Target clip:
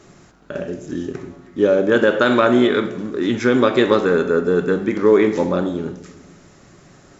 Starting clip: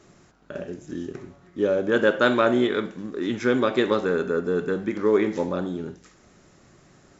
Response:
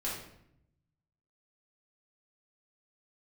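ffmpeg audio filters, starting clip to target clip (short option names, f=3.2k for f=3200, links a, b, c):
-filter_complex "[0:a]asplit=2[a][b];[1:a]atrim=start_sample=2205,asetrate=22932,aresample=44100[c];[b][c]afir=irnorm=-1:irlink=0,volume=-20dB[d];[a][d]amix=inputs=2:normalize=0,alimiter=level_in=8.5dB:limit=-1dB:release=50:level=0:latency=1,volume=-2.5dB"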